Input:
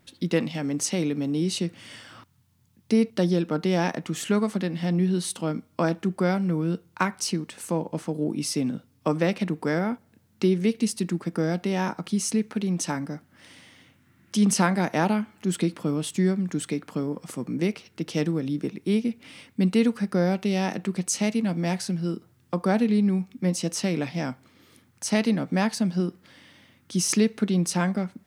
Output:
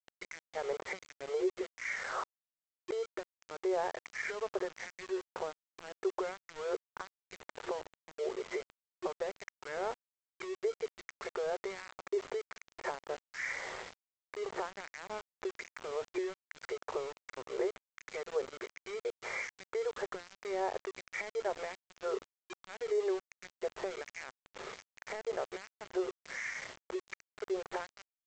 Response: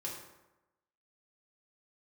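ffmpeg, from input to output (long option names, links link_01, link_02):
-filter_complex "[0:a]dynaudnorm=framelen=200:gausssize=11:maxgain=9dB,adynamicequalizer=threshold=0.00562:dfrequency=1400:dqfactor=6.7:tfrequency=1400:tqfactor=6.7:attack=5:release=100:ratio=0.375:range=2:mode=cutabove:tftype=bell,afftfilt=real='re*between(b*sr/4096,360,2400)':imag='im*between(b*sr/4096,360,2400)':win_size=4096:overlap=0.75,acompressor=threshold=-42dB:ratio=10,alimiter=level_in=13.5dB:limit=-24dB:level=0:latency=1:release=391,volume=-13.5dB,acrossover=split=1600[link_01][link_02];[link_01]aeval=exprs='val(0)*(1-1/2+1/2*cos(2*PI*1.3*n/s))':channel_layout=same[link_03];[link_02]aeval=exprs='val(0)*(1-1/2-1/2*cos(2*PI*1.3*n/s))':channel_layout=same[link_04];[link_03][link_04]amix=inputs=2:normalize=0,aresample=16000,aeval=exprs='val(0)*gte(abs(val(0)),0.00141)':channel_layout=same,aresample=44100,volume=15.5dB"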